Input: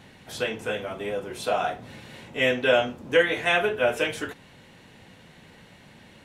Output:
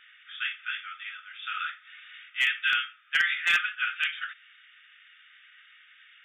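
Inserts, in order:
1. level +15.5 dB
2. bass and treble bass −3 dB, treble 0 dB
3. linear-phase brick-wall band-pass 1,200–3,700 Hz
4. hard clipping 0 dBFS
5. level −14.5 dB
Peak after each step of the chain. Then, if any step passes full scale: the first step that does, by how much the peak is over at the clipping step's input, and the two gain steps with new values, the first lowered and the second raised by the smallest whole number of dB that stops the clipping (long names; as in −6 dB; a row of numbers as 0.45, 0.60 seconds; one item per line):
+8.5, +8.0, +5.0, 0.0, −14.5 dBFS
step 1, 5.0 dB
step 1 +10.5 dB, step 5 −9.5 dB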